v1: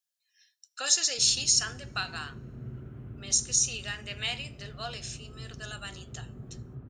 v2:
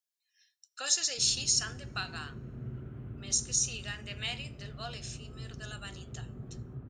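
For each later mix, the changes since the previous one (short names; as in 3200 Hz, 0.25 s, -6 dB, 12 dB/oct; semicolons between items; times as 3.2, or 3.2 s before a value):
speech -4.0 dB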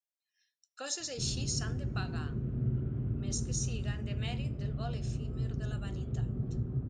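background: remove tape spacing loss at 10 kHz 22 dB; master: add tilt shelf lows +9.5 dB, about 740 Hz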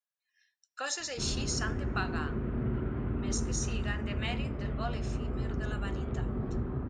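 background +7.5 dB; master: add graphic EQ 125/1000/2000 Hz -12/+9/+8 dB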